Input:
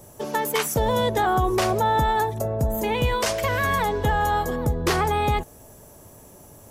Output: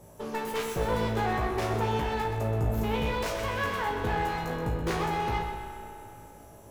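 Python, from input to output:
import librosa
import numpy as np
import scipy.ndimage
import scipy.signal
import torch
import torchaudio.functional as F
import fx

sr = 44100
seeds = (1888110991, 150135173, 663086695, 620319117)

y = fx.tracing_dist(x, sr, depth_ms=0.044)
y = fx.clip_asym(y, sr, top_db=-32.5, bottom_db=-17.0)
y = fx.high_shelf(y, sr, hz=3800.0, db=-7.0)
y = fx.comb_fb(y, sr, f0_hz=56.0, decay_s=0.35, harmonics='all', damping=0.0, mix_pct=90)
y = fx.echo_feedback(y, sr, ms=127, feedback_pct=51, wet_db=-9.0)
y = fx.rev_spring(y, sr, rt60_s=3.0, pass_ms=(31,), chirp_ms=55, drr_db=6.5)
y = F.gain(torch.from_numpy(y), 3.5).numpy()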